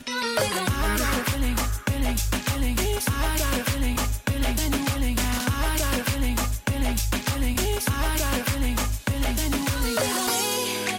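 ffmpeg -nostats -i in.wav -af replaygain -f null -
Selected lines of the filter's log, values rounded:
track_gain = +8.9 dB
track_peak = 0.164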